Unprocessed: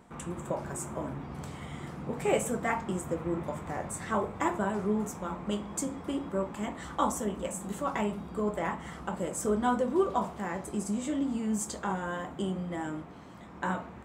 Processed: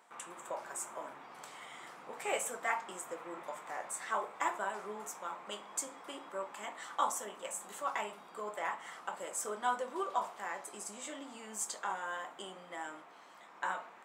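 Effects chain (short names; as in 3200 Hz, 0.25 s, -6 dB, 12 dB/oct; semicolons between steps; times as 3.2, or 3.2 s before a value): HPF 770 Hz 12 dB/oct; gain -1.5 dB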